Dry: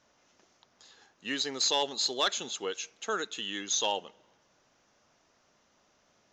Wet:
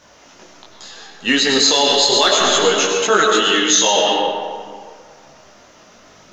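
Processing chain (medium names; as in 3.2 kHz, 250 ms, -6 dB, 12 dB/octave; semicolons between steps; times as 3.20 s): 3.32–3.96 s: high-pass 140 Hz 24 dB/octave; algorithmic reverb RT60 2 s, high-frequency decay 0.55×, pre-delay 60 ms, DRR 1 dB; loudness maximiser +23 dB; detune thickener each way 11 cents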